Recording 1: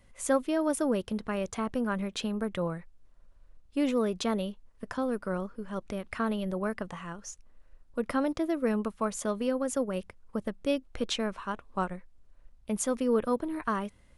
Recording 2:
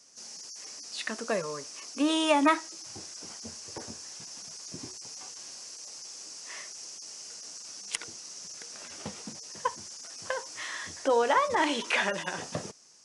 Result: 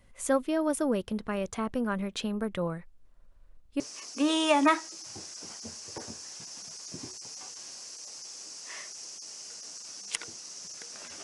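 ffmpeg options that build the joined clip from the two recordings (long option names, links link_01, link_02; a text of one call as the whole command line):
ffmpeg -i cue0.wav -i cue1.wav -filter_complex "[0:a]apad=whole_dur=11.23,atrim=end=11.23,atrim=end=3.802[link_01];[1:a]atrim=start=1.598:end=9.03[link_02];[link_01][link_02]acrossfade=duration=0.004:curve1=hsin:curve2=hsin" out.wav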